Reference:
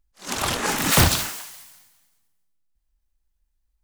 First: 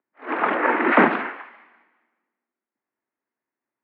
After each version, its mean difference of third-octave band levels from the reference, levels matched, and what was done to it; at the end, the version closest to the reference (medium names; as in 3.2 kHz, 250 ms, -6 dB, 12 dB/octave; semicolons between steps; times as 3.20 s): 17.5 dB: mistuned SSB +70 Hz 170–2100 Hz; trim +6 dB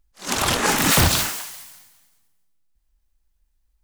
2.0 dB: peak limiter -11 dBFS, peak gain reduction 7 dB; trim +4.5 dB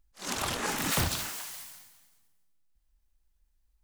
4.5 dB: compression 2:1, threshold -37 dBFS, peak gain reduction 13.5 dB; trim +1 dB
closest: second